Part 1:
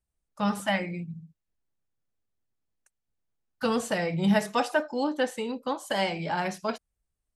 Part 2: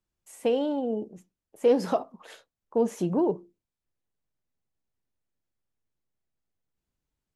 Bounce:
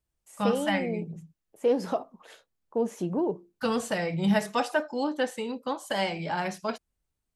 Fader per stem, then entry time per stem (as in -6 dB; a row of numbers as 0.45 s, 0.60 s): -1.0 dB, -3.0 dB; 0.00 s, 0.00 s